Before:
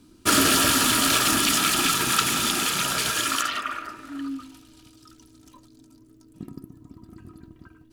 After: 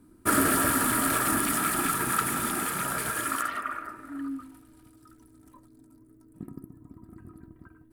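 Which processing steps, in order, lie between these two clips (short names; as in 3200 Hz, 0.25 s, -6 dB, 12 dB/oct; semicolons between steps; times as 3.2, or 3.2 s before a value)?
band shelf 4200 Hz -14 dB; gain -2.5 dB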